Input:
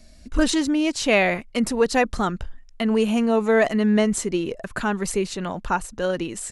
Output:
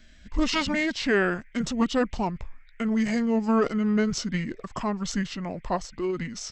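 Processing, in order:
noise in a band 2,100–3,300 Hz −61 dBFS
formants moved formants −6 semitones
level −4 dB

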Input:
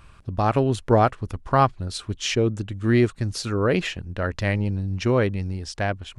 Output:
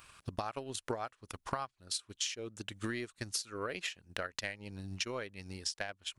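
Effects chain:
spectral tilt +3.5 dB per octave
transient designer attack +9 dB, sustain −7 dB
downward compressor 6 to 1, threshold −30 dBFS, peak gain reduction 19.5 dB
level −5.5 dB

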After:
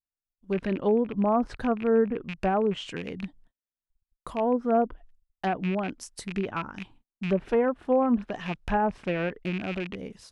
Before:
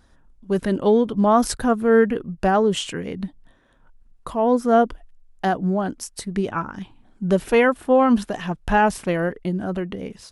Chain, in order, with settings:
loose part that buzzes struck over −30 dBFS, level −19 dBFS
treble cut that deepens with the level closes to 1,000 Hz, closed at −13 dBFS
noise gate −45 dBFS, range −42 dB
level −6.5 dB

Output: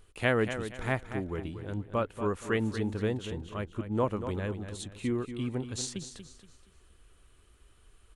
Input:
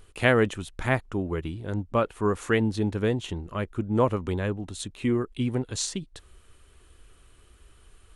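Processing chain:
repeating echo 236 ms, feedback 32%, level −10 dB
level −6 dB

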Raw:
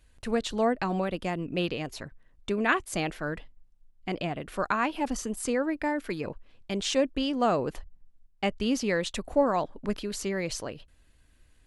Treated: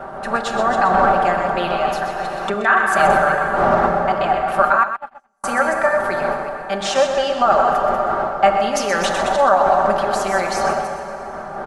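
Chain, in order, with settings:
delay that plays each chunk backwards 151 ms, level −7.5 dB
wind on the microphone 410 Hz −30 dBFS
0:08.63–0:09.79: transient designer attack −10 dB, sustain +9 dB
flat-topped bell 1,000 Hz +15 dB
notch filter 1,000 Hz, Q 8.9
dense smooth reverb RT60 4.1 s, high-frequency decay 0.6×, DRR 6 dB
brickwall limiter −8.5 dBFS, peak gain reduction 9 dB
0:04.83–0:05.44: noise gate −14 dBFS, range −49 dB
low-shelf EQ 370 Hz −9.5 dB
comb filter 5.1 ms, depth 70%
on a send: single-tap delay 126 ms −9.5 dB
0:01.87–0:02.54: on the sum: multiband upward and downward compressor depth 100%
level +3.5 dB

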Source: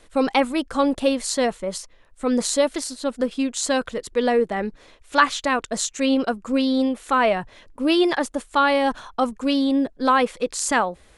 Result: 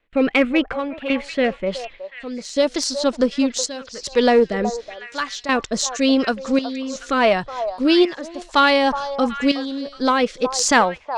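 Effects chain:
noise gate with hold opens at −39 dBFS
low-pass filter sweep 2,500 Hz → 5,600 Hz, 0:01.59–0:02.44
rotating-speaker cabinet horn 0.9 Hz
in parallel at −4.5 dB: asymmetric clip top −19 dBFS
on the sum: gate pattern "xxxx..xx" 82 BPM −12 dB
on a send: echo through a band-pass that steps 369 ms, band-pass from 770 Hz, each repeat 1.4 octaves, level −7 dB
on the sum: level +1.5 dB

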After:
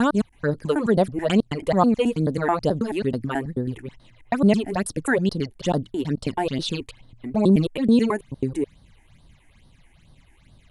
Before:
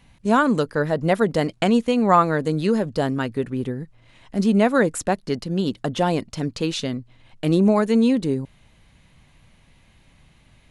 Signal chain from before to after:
slices reordered back to front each 108 ms, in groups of 4
all-pass phaser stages 8, 2.3 Hz, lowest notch 150–2,400 Hz
level +1 dB

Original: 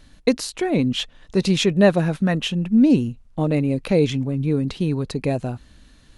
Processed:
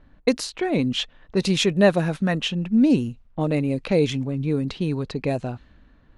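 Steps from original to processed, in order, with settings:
low-pass that shuts in the quiet parts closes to 1,300 Hz, open at −16 dBFS
low-shelf EQ 410 Hz −3.5 dB

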